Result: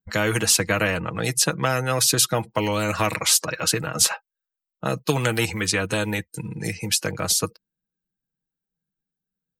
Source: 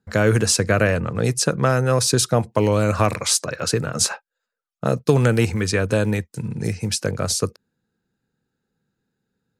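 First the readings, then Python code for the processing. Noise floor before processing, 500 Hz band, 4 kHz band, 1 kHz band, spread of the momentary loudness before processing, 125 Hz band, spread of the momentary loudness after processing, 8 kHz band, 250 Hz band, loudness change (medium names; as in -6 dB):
-83 dBFS, -5.5 dB, +2.0 dB, -1.0 dB, 8 LU, -7.0 dB, 11 LU, +1.5 dB, -5.0 dB, -1.5 dB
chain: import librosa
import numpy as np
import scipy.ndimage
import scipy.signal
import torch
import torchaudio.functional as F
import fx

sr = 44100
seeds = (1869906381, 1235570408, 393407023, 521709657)

y = fx.bin_expand(x, sr, power=1.5)
y = y + 0.54 * np.pad(y, (int(6.3 * sr / 1000.0), 0))[:len(y)]
y = fx.spectral_comp(y, sr, ratio=2.0)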